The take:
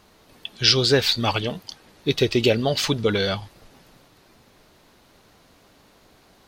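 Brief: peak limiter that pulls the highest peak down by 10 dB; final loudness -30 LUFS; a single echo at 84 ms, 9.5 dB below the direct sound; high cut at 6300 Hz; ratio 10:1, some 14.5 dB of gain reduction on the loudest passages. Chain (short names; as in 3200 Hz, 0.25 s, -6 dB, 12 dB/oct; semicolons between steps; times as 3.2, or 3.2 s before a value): LPF 6300 Hz; compressor 10:1, threshold -28 dBFS; limiter -24.5 dBFS; echo 84 ms -9.5 dB; gain +5.5 dB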